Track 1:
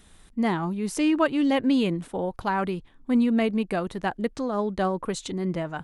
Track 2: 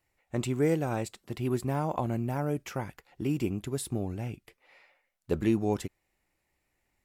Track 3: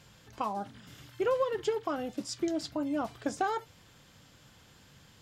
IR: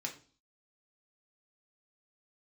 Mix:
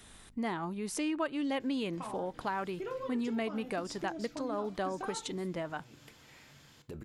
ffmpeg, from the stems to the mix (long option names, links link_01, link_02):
-filter_complex "[0:a]aeval=exprs='val(0)+0.00178*(sin(2*PI*50*n/s)+sin(2*PI*2*50*n/s)/2+sin(2*PI*3*50*n/s)/3+sin(2*PI*4*50*n/s)/4+sin(2*PI*5*50*n/s)/5)':channel_layout=same,lowshelf=frequency=210:gain=-9.5,volume=2dB,asplit=3[link_01][link_02][link_03];[link_02]volume=-23.5dB[link_04];[1:a]alimiter=level_in=6dB:limit=-24dB:level=0:latency=1:release=32,volume=-6dB,acompressor=threshold=-37dB:ratio=6,adelay=1600,volume=-3dB,asplit=2[link_05][link_06];[link_06]volume=-10.5dB[link_07];[2:a]adelay=1600,volume=-3.5dB,asplit=2[link_08][link_09];[link_09]volume=-3dB[link_10];[link_03]apad=whole_len=381410[link_11];[link_05][link_11]sidechaincompress=threshold=-46dB:ratio=8:attack=16:release=243[link_12];[link_12][link_08]amix=inputs=2:normalize=0,acompressor=threshold=-37dB:ratio=6,volume=0dB[link_13];[3:a]atrim=start_sample=2205[link_14];[link_04][link_07][link_10]amix=inputs=3:normalize=0[link_15];[link_15][link_14]afir=irnorm=-1:irlink=0[link_16];[link_01][link_13][link_16]amix=inputs=3:normalize=0,acompressor=threshold=-40dB:ratio=2"